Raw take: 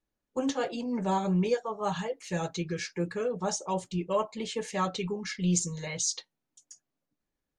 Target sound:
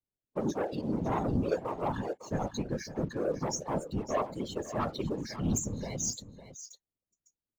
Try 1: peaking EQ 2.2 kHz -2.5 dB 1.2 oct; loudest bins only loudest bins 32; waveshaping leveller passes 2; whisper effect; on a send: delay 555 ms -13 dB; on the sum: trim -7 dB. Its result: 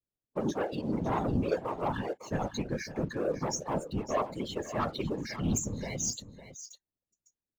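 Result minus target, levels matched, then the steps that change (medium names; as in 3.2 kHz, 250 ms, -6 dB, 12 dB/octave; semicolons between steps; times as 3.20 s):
2 kHz band +3.0 dB
change: peaking EQ 2.2 kHz -8.5 dB 1.2 oct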